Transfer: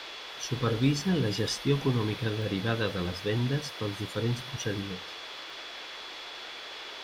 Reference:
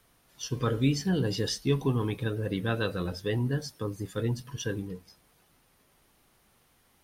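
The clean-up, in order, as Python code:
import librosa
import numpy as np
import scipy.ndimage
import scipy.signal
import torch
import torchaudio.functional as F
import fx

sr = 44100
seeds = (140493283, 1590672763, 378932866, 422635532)

y = fx.notch(x, sr, hz=3400.0, q=30.0)
y = fx.fix_interpolate(y, sr, at_s=(2.42, 3.09, 4.63, 5.5), length_ms=1.3)
y = fx.noise_reduce(y, sr, print_start_s=5.43, print_end_s=5.93, reduce_db=23.0)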